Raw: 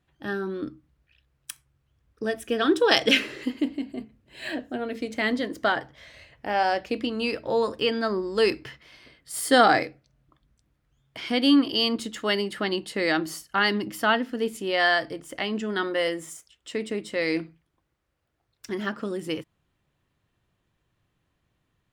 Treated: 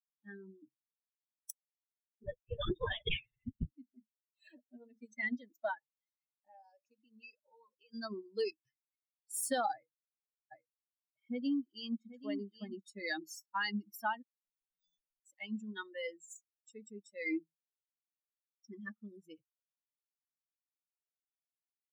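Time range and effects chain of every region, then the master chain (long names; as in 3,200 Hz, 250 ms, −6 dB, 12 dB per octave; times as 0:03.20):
0:02.23–0:03.72: de-essing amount 45% + linear-prediction vocoder at 8 kHz whisper
0:05.77–0:07.94: low-shelf EQ 100 Hz −11.5 dB + downward compressor 16 to 1, threshold −30 dBFS
0:09.73–0:12.82: low-pass filter 1,400 Hz 6 dB per octave + single-tap delay 781 ms −5.5 dB
0:14.22–0:15.26: lower of the sound and its delayed copy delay 1.4 ms + guitar amp tone stack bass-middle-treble 10-0-1 + volume swells 389 ms
0:17.25–0:18.73: mu-law and A-law mismatch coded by mu + bass and treble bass +2 dB, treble −12 dB + comb filter 3.4 ms, depth 37%
whole clip: spectral dynamics exaggerated over time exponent 3; parametric band 830 Hz +13 dB 0.22 octaves; downward compressor 6 to 1, threshold −31 dBFS; level −1.5 dB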